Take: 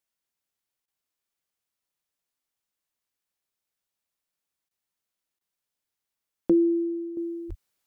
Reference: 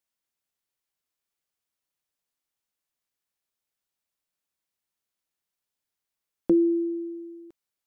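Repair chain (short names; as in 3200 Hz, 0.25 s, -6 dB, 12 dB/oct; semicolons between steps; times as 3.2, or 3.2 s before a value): 7.48–7.6 HPF 140 Hz 24 dB/oct; interpolate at 0.86/4.69/5.39, 17 ms; 7.17 gain correction -8.5 dB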